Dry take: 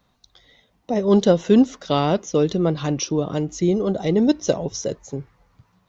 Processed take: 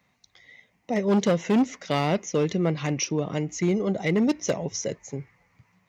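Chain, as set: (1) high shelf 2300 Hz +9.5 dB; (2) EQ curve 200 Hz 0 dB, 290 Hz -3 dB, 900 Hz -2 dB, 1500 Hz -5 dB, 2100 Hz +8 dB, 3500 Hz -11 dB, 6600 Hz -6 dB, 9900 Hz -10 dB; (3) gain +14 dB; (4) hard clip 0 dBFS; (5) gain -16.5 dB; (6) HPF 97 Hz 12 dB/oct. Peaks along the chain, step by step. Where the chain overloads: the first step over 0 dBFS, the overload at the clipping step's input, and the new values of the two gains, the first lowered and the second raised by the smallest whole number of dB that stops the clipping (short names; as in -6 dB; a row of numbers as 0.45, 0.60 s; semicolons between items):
-2.0, -5.5, +8.5, 0.0, -16.5, -12.0 dBFS; step 3, 8.5 dB; step 3 +5 dB, step 5 -7.5 dB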